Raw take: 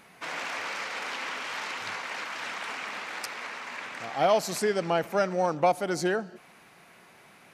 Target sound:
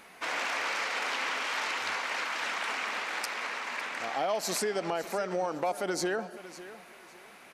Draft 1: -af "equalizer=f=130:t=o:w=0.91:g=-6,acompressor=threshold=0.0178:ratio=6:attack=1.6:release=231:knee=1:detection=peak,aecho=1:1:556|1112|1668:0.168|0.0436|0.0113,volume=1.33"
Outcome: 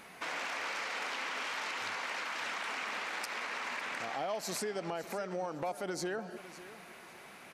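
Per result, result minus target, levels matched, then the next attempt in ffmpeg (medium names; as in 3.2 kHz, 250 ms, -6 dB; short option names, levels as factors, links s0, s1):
compression: peak gain reduction +6.5 dB; 125 Hz band +3.5 dB
-af "equalizer=f=130:t=o:w=0.91:g=-6,acompressor=threshold=0.0422:ratio=6:attack=1.6:release=231:knee=1:detection=peak,aecho=1:1:556|1112|1668:0.168|0.0436|0.0113,volume=1.33"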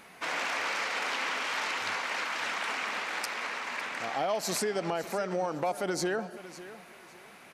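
125 Hz band +4.0 dB
-af "equalizer=f=130:t=o:w=0.91:g=-14,acompressor=threshold=0.0422:ratio=6:attack=1.6:release=231:knee=1:detection=peak,aecho=1:1:556|1112|1668:0.168|0.0436|0.0113,volume=1.33"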